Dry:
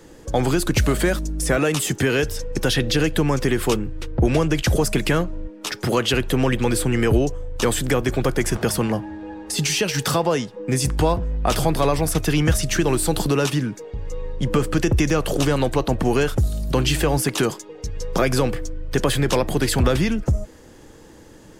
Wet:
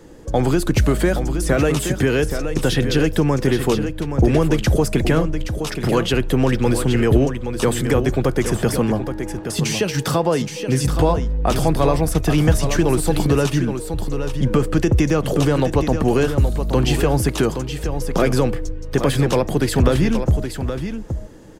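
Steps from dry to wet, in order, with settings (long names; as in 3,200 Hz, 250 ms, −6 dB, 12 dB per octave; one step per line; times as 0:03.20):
tilt shelving filter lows +3 dB, about 1,100 Hz
on a send: single-tap delay 822 ms −8.5 dB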